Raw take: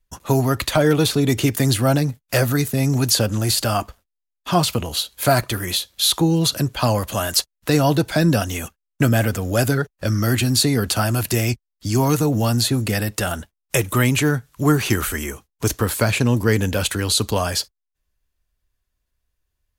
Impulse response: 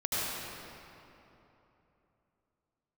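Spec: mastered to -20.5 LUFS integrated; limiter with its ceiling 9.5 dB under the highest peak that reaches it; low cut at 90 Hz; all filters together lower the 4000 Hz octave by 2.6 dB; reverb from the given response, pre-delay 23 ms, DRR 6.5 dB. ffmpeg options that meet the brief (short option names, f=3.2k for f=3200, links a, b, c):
-filter_complex "[0:a]highpass=90,equalizer=f=4k:t=o:g=-3,alimiter=limit=-13.5dB:level=0:latency=1,asplit=2[a][b];[1:a]atrim=start_sample=2205,adelay=23[c];[b][c]afir=irnorm=-1:irlink=0,volume=-15.5dB[d];[a][d]amix=inputs=2:normalize=0,volume=2.5dB"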